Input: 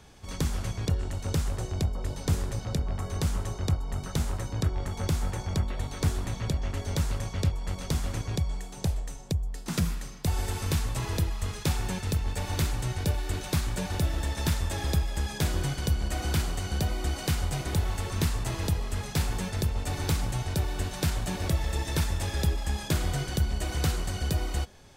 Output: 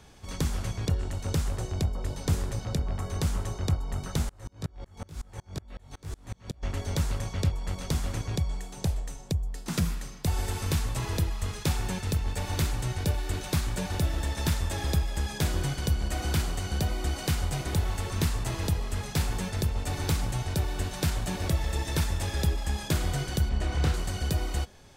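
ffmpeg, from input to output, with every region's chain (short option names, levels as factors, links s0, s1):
-filter_complex "[0:a]asettb=1/sr,asplit=3[s0][s1][s2];[s0]atrim=end=4.294[s3];[s1]atrim=start=4.29:end=6.63,asetpts=PTS-STARTPTS,afade=t=in:d=0.004:c=qsin,afade=t=out:st=2.336:d=0.004:c=qsin,flanger=delay=17.5:depth=4.2:speed=2.1,aeval=exprs='val(0)*pow(10,-31*if(lt(mod(-5.4*n/s,1),2*abs(-5.4)/1000),1-mod(-5.4*n/s,1)/(2*abs(-5.4)/1000),(mod(-5.4*n/s,1)-2*abs(-5.4)/1000)/(1-2*abs(-5.4)/1000))/20)':c=same[s4];[s2]atrim=start=6.626[s5];[s3][s4]acrossfade=d=0.004:c1=hsin:c2=qsin[s6];[s6][s5]acrossfade=d=0.004:c1=qsin:c2=hsin,asettb=1/sr,asplit=3[s7][s8][s9];[s7]atrim=end=23.494[s10];[s8]atrim=start=23.49:end=23.94,asetpts=PTS-STARTPTS,afade=t=in:d=0.004:c=qsin,afade=t=out:st=0.446:d=0.004:c=qsin,aemphasis=mode=reproduction:type=50fm,asplit=2[s11][s12];[s12]adelay=28,volume=0.473[s13];[s11][s13]amix=inputs=2:normalize=0,atrim=end_sample=19845[s14];[s9]atrim=start=23.936[s15];[s10][s14]acrossfade=d=0.004:c1=hsin:c2=qsin[s16];[s16][s15]acrossfade=d=0.004:c1=qsin:c2=hsin"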